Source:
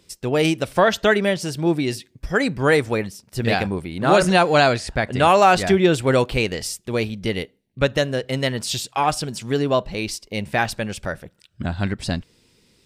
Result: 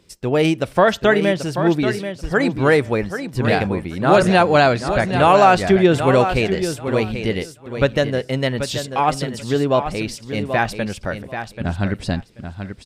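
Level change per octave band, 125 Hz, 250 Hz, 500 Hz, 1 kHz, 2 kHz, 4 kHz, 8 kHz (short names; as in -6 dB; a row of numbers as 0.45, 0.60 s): +3.0, +3.0, +3.0, +2.5, +1.0, -1.0, -3.5 dB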